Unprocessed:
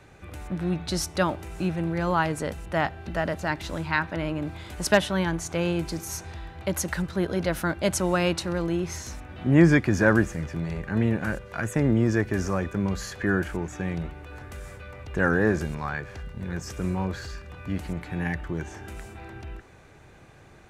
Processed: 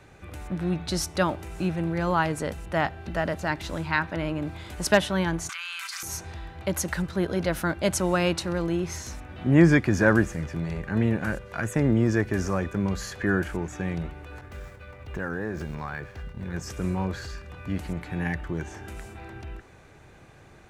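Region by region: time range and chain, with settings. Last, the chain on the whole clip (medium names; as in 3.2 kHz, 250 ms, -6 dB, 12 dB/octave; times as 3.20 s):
5.49–6.03 s: elliptic high-pass 1.2 kHz, stop band 70 dB + level flattener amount 100%
14.41–16.54 s: median filter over 5 samples + expander -39 dBFS + compression 3:1, threshold -29 dBFS
whole clip: none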